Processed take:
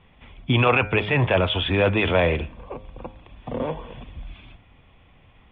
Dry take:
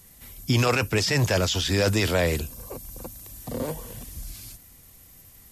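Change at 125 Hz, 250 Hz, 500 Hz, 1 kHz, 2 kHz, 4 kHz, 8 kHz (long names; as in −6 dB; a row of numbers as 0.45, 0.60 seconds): +1.0 dB, +2.0 dB, +3.5 dB, +5.5 dB, +4.0 dB, −0.5 dB, below −40 dB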